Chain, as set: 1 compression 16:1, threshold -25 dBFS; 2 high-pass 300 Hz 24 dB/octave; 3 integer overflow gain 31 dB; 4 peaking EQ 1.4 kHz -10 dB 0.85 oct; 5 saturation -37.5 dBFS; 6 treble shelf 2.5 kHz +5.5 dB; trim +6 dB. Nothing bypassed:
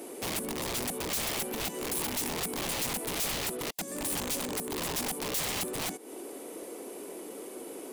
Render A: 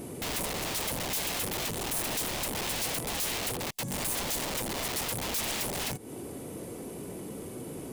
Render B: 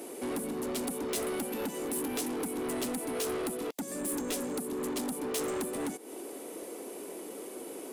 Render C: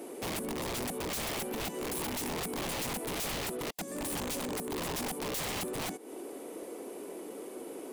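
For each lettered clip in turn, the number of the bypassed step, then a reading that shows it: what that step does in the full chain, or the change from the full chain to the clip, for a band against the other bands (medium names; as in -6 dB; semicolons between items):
2, 125 Hz band +3.0 dB; 3, 250 Hz band +9.0 dB; 6, 8 kHz band -4.5 dB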